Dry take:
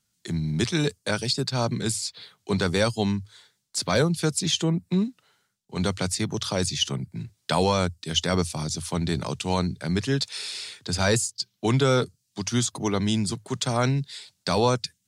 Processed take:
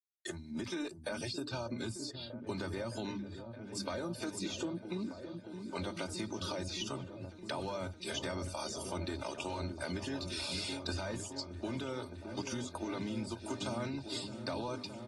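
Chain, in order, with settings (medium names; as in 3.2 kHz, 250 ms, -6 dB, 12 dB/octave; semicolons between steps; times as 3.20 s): hum notches 50/100/150/200/250 Hz; de-esser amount 85%; spectral noise reduction 17 dB; expander -45 dBFS; band-stop 3.1 kHz, Q 18; comb 3.3 ms, depth 71%; peak limiter -21.5 dBFS, peak gain reduction 11.5 dB; compression 6:1, threshold -35 dBFS, peak gain reduction 10 dB; delay with an opening low-pass 617 ms, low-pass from 400 Hz, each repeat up 1 oct, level -6 dB; trim -1.5 dB; AAC 32 kbps 48 kHz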